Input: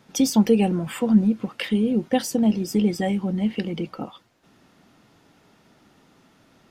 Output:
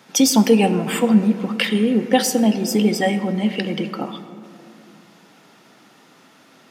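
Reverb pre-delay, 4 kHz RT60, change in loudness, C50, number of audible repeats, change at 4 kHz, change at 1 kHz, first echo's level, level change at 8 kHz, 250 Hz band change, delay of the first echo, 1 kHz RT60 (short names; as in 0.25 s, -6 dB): 4 ms, 1.3 s, +4.0 dB, 11.0 dB, none, +9.0 dB, +7.5 dB, none, +9.0 dB, +3.0 dB, none, 2.1 s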